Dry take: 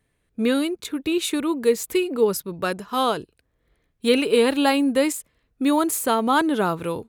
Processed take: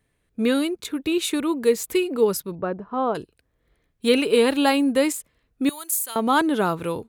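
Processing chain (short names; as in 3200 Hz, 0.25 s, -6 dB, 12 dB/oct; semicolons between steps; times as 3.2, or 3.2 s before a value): 2.55–3.15 LPF 1000 Hz 12 dB/oct; 5.69–6.16 differentiator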